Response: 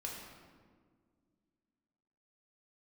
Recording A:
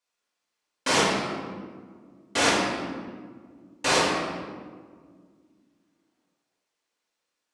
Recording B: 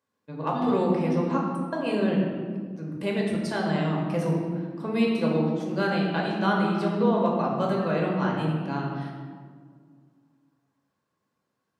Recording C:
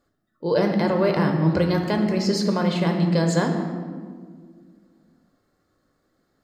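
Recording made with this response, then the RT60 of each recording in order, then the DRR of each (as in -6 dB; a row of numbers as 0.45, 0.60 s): B; 1.8, 1.8, 1.8 s; -6.5, -2.5, 3.0 dB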